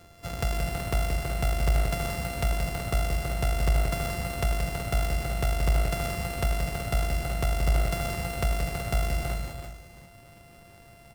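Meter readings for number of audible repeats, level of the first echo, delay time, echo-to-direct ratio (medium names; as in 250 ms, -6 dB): 4, -5.5 dB, 176 ms, -2.5 dB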